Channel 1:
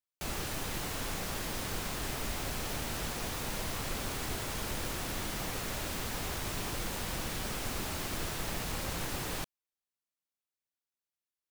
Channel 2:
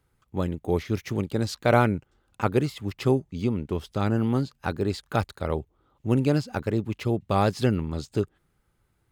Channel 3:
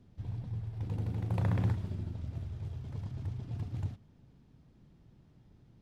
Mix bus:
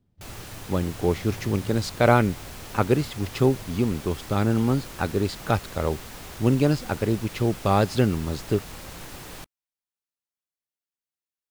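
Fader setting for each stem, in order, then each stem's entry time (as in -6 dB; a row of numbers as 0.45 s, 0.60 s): -3.5 dB, +2.0 dB, -9.0 dB; 0.00 s, 0.35 s, 0.00 s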